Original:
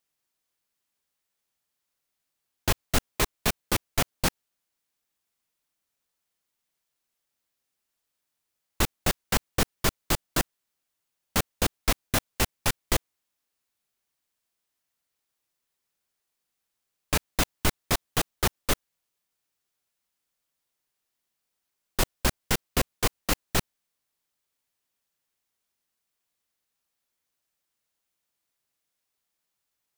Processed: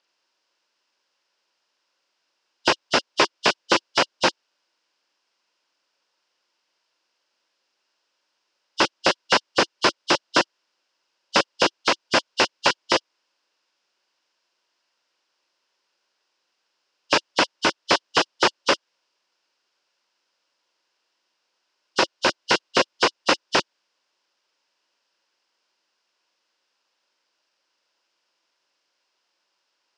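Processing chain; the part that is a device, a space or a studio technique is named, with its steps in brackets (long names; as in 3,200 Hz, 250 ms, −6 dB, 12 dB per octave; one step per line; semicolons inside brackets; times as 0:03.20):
hearing aid with frequency lowering (hearing-aid frequency compression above 2,800 Hz 1.5 to 1; downward compressor 2.5 to 1, threshold −25 dBFS, peak gain reduction 5.5 dB; loudspeaker in its box 290–5,600 Hz, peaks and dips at 340 Hz +6 dB, 550 Hz +7 dB, 970 Hz +8 dB, 1,500 Hz +6 dB, 2,800 Hz +7 dB, 5,100 Hz +8 dB)
level +8 dB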